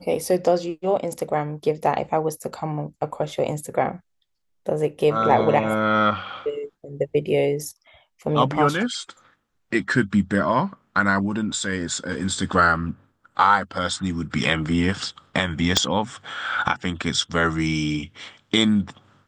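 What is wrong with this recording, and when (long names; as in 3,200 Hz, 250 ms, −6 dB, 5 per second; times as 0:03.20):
0:15.77: click −3 dBFS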